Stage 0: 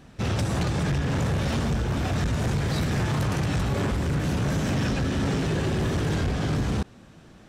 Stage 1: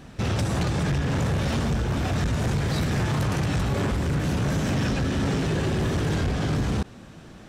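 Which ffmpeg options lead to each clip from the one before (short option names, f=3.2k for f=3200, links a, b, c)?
-af "alimiter=level_in=1.5dB:limit=-24dB:level=0:latency=1:release=34,volume=-1.5dB,volume=5dB"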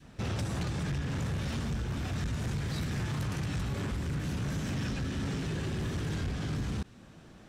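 -af "adynamicequalizer=threshold=0.00794:dfrequency=630:dqfactor=0.79:tfrequency=630:tqfactor=0.79:attack=5:release=100:ratio=0.375:range=3:mode=cutabove:tftype=bell,volume=-8dB"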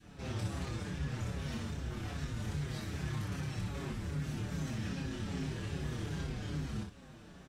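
-filter_complex "[0:a]alimiter=level_in=9.5dB:limit=-24dB:level=0:latency=1,volume=-9.5dB,aecho=1:1:27|60:0.708|0.631,asplit=2[a][b];[b]adelay=6.2,afreqshift=-2.5[c];[a][c]amix=inputs=2:normalize=1"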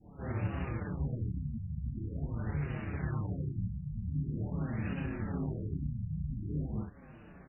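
-af "asoftclip=type=tanh:threshold=-29.5dB,aeval=exprs='0.0316*(cos(1*acos(clip(val(0)/0.0316,-1,1)))-cos(1*PI/2))+0.00501*(cos(3*acos(clip(val(0)/0.0316,-1,1)))-cos(3*PI/2))':c=same,afftfilt=real='re*lt(b*sr/1024,210*pow(3000/210,0.5+0.5*sin(2*PI*0.45*pts/sr)))':imag='im*lt(b*sr/1024,210*pow(3000/210,0.5+0.5*sin(2*PI*0.45*pts/sr)))':win_size=1024:overlap=0.75,volume=6.5dB"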